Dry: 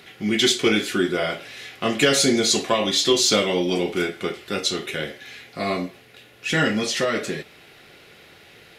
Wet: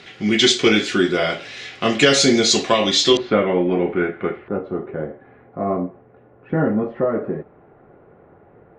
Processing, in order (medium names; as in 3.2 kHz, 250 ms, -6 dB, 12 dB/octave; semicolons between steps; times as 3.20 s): low-pass 7.2 kHz 24 dB/octave, from 3.17 s 1.9 kHz, from 4.48 s 1.1 kHz; trim +4 dB